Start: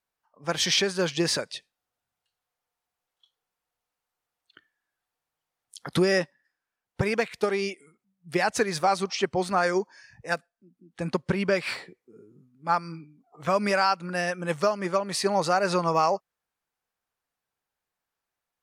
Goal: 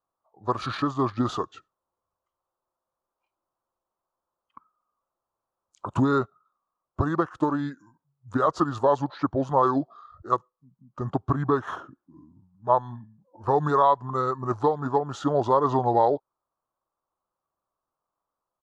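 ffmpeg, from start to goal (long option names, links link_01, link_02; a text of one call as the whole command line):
ffmpeg -i in.wav -af "highshelf=frequency=2200:width_type=q:width=3:gain=-11,asetrate=32097,aresample=44100,atempo=1.37395" out.wav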